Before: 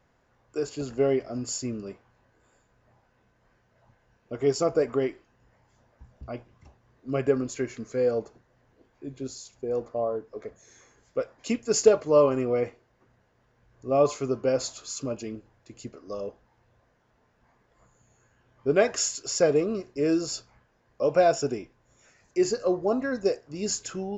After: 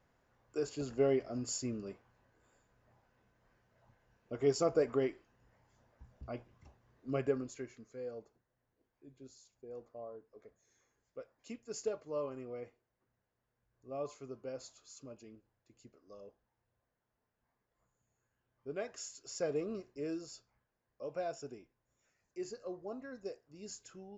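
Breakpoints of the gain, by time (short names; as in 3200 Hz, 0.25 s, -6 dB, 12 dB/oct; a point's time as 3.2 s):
7.09 s -6.5 dB
7.91 s -19 dB
19.02 s -19 dB
19.75 s -11 dB
20.34 s -18.5 dB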